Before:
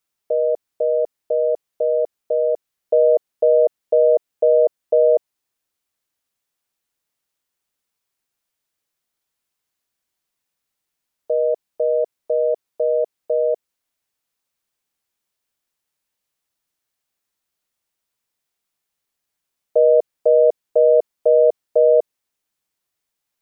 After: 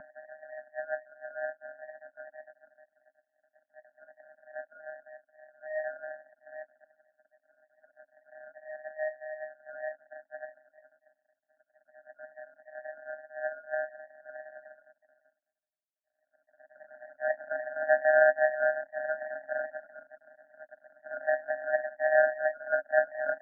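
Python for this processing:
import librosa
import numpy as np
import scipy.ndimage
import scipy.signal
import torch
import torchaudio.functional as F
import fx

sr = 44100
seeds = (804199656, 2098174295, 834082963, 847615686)

y = fx.paulstretch(x, sr, seeds[0], factor=8.1, window_s=0.5, from_s=0.77)
y = fx.power_curve(y, sr, exponent=3.0)
y = scipy.signal.sosfilt(scipy.signal.cheby1(4, 1.0, [280.0, 580.0], 'bandstop', fs=sr, output='sos'), y)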